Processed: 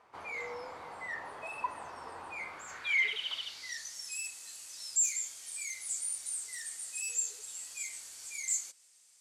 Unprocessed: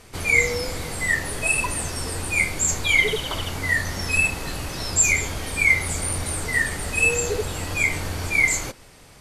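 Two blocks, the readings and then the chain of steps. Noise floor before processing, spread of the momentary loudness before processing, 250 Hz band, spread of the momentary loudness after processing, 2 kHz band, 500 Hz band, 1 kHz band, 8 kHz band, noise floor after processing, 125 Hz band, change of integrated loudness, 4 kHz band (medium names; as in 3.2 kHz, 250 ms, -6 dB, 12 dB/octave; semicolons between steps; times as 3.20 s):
-48 dBFS, 10 LU, under -25 dB, 15 LU, -17.5 dB, -20.5 dB, -10.5 dB, -9.0 dB, -63 dBFS, under -35 dB, -14.0 dB, -11.0 dB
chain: hard clipper -19.5 dBFS, distortion -9 dB; band-pass sweep 960 Hz -> 7.6 kHz, 2.41–3.99 s; trim -4 dB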